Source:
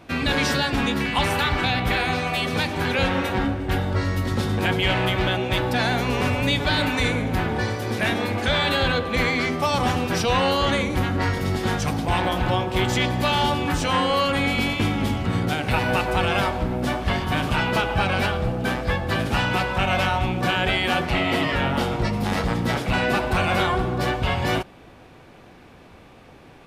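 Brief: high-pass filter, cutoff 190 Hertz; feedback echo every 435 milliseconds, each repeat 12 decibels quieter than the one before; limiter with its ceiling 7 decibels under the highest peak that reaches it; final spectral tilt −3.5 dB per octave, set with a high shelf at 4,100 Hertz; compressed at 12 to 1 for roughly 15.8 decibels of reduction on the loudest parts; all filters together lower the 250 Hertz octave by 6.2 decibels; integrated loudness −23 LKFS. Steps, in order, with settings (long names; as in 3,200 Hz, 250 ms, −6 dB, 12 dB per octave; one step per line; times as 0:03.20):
high-pass filter 190 Hz
parametric band 250 Hz −6 dB
high-shelf EQ 4,100 Hz +4.5 dB
downward compressor 12 to 1, threshold −34 dBFS
brickwall limiter −29.5 dBFS
repeating echo 435 ms, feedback 25%, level −12 dB
level +15.5 dB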